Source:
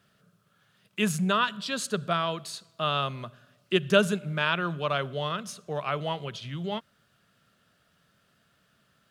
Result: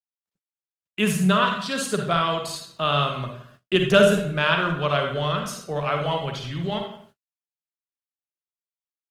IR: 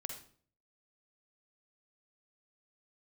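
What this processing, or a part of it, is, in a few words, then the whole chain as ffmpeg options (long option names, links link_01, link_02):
speakerphone in a meeting room: -filter_complex "[1:a]atrim=start_sample=2205[link_01];[0:a][link_01]afir=irnorm=-1:irlink=0,asplit=2[link_02][link_03];[link_03]adelay=170,highpass=300,lowpass=3400,asoftclip=type=hard:threshold=-19dB,volume=-16dB[link_04];[link_02][link_04]amix=inputs=2:normalize=0,dynaudnorm=framelen=120:gausssize=3:maxgain=3.5dB,agate=range=-48dB:threshold=-55dB:ratio=16:detection=peak,volume=4dB" -ar 48000 -c:a libopus -b:a 24k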